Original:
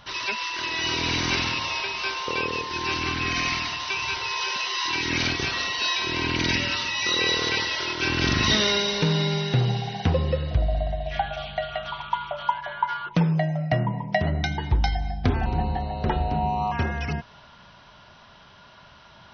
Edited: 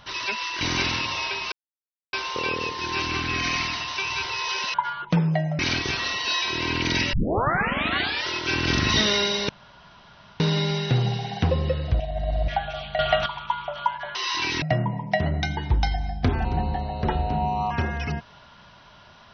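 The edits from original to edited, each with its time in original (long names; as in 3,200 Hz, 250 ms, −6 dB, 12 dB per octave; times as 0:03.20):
0:00.61–0:01.14: remove
0:02.05: splice in silence 0.61 s
0:04.66–0:05.13: swap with 0:12.78–0:13.63
0:06.67: tape start 1.14 s
0:09.03: splice in room tone 0.91 s
0:10.63–0:11.11: reverse
0:11.62–0:11.89: clip gain +10 dB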